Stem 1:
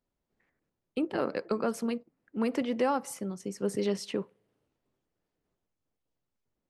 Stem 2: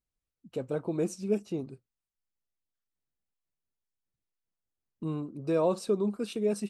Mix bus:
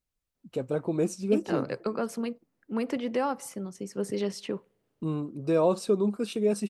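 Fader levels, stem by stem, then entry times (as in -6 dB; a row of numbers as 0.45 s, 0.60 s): -0.5 dB, +3.0 dB; 0.35 s, 0.00 s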